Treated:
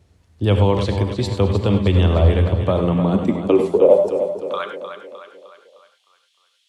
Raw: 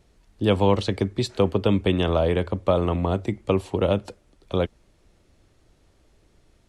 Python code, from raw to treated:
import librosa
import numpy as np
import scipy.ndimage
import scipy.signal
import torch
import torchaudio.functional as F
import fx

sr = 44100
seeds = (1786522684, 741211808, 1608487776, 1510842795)

y = fx.spec_box(x, sr, start_s=3.69, length_s=0.4, low_hz=1100.0, high_hz=5000.0, gain_db=-15)
y = fx.rev_gated(y, sr, seeds[0], gate_ms=120, shape='rising', drr_db=6.0)
y = fx.filter_sweep_highpass(y, sr, from_hz=82.0, to_hz=3200.0, start_s=2.42, end_s=5.39, q=4.2)
y = fx.echo_feedback(y, sr, ms=306, feedback_pct=50, wet_db=-9)